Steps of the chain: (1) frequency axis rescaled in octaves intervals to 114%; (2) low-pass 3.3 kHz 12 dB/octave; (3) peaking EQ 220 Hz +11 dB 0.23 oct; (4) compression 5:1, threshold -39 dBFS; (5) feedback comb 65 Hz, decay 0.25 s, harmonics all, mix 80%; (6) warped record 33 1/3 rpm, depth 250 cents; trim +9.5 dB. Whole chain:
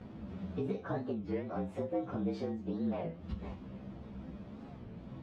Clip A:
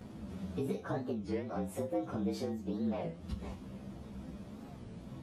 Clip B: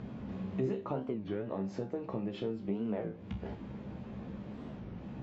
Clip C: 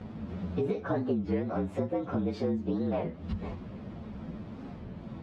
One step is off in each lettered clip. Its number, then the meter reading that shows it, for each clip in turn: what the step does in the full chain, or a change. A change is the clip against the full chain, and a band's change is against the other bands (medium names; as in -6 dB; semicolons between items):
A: 2, 4 kHz band +5.0 dB; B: 1, 4 kHz band +3.0 dB; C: 5, loudness change +5.5 LU